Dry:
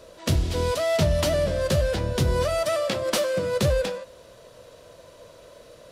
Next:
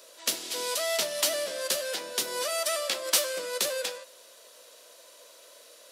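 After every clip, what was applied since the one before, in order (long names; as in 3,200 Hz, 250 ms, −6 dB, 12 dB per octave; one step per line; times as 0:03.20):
high-pass filter 250 Hz 24 dB per octave
spectral tilt +4 dB per octave
level −5.5 dB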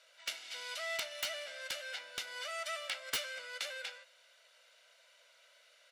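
resonant band-pass 2,100 Hz, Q 1.5
comb filter 1.4 ms, depth 55%
wrap-around overflow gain 21 dB
level −4 dB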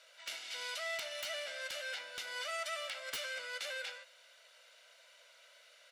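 brickwall limiter −34 dBFS, peak gain reduction 9 dB
level +3 dB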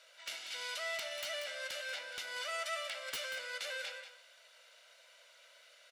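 single-tap delay 187 ms −10.5 dB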